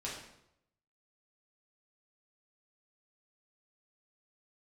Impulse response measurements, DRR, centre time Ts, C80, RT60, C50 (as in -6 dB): -6.5 dB, 47 ms, 6.5 dB, 0.80 s, 3.5 dB